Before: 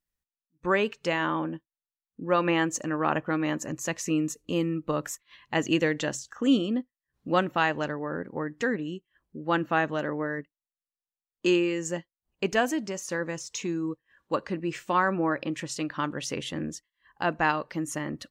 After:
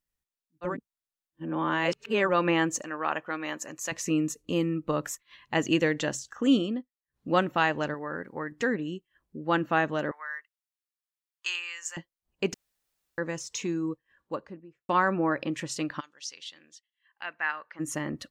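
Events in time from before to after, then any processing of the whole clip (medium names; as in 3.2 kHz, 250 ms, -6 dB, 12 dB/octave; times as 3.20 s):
0.69–2.29 s: reverse, crossfade 0.16 s
2.82–3.92 s: high-pass 860 Hz 6 dB/octave
6.62–7.29 s: dip -12.5 dB, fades 0.27 s
7.94–8.52 s: tilt shelf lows -5.5 dB, about 1.1 kHz
10.11–11.97 s: high-pass 1.1 kHz 24 dB/octave
12.54–13.18 s: room tone
13.85–14.89 s: studio fade out
15.99–17.79 s: band-pass filter 6.5 kHz -> 1.4 kHz, Q 2.3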